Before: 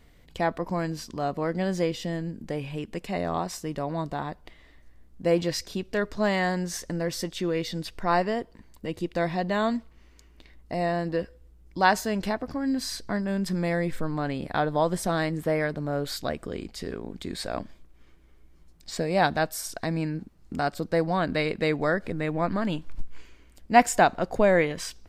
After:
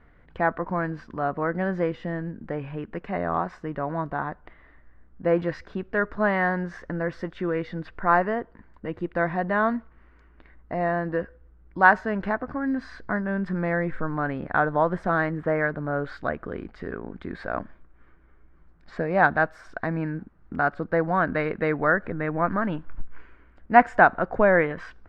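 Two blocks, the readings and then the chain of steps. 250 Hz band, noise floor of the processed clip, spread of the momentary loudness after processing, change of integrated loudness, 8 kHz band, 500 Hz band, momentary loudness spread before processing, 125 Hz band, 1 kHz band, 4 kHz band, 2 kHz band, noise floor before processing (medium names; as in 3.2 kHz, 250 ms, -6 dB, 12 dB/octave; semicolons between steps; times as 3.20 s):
0.0 dB, -55 dBFS, 15 LU, +2.0 dB, under -25 dB, +1.0 dB, 12 LU, 0.0 dB, +3.0 dB, under -10 dB, +6.0 dB, -55 dBFS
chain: resonant low-pass 1.5 kHz, resonance Q 2.7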